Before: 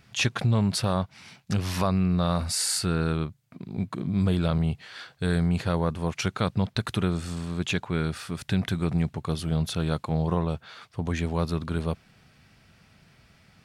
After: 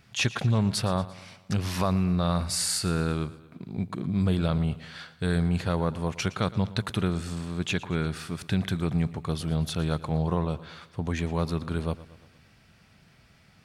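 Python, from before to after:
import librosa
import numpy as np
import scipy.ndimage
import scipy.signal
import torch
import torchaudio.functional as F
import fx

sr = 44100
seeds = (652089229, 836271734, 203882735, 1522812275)

y = fx.echo_feedback(x, sr, ms=115, feedback_pct=53, wet_db=-17.5)
y = y * 10.0 ** (-1.0 / 20.0)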